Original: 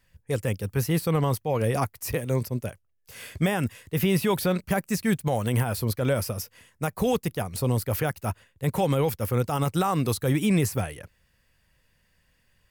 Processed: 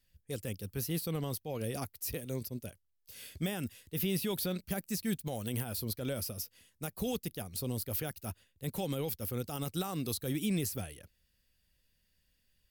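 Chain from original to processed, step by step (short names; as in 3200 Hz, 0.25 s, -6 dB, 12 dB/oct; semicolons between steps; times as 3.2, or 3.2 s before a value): ten-band EQ 125 Hz -7 dB, 500 Hz -4 dB, 1000 Hz -10 dB, 2000 Hz -6 dB, 4000 Hz +4 dB, 8000 Hz -3 dB, 16000 Hz +6 dB; gain -6.5 dB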